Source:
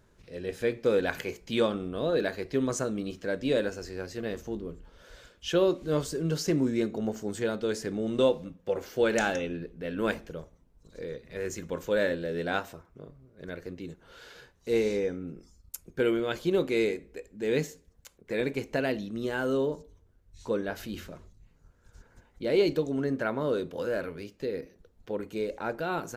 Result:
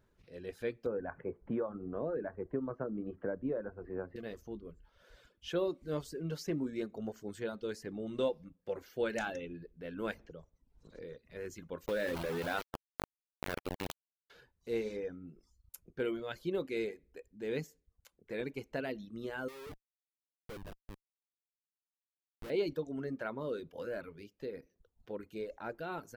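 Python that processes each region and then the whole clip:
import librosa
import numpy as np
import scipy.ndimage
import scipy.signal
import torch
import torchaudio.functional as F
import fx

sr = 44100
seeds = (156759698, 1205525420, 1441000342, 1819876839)

y = fx.chain(x, sr, fx.lowpass(hz=1400.0, slope=24),
    fx.band_squash(depth_pct=100), at=(0.86, 4.16))
y = fx.chain(y, sr, fx.lowpass(hz=8600.0, slope=12),
    fx.band_squash(depth_pct=70), at=(10.19, 11.02))
y = fx.chain(y, sr, fx.sample_gate(floor_db=-33.5),
    fx.env_flatten(amount_pct=70), at=(11.86, 14.3))
y = fx.chain(y, sr, fx.highpass(hz=230.0, slope=12),
    fx.schmitt(flips_db=-31.0), at=(19.48, 22.5))
y = fx.dereverb_blind(y, sr, rt60_s=0.61)
y = fx.peak_eq(y, sr, hz=7200.0, db=-5.5, octaves=1.0)
y = y * librosa.db_to_amplitude(-8.5)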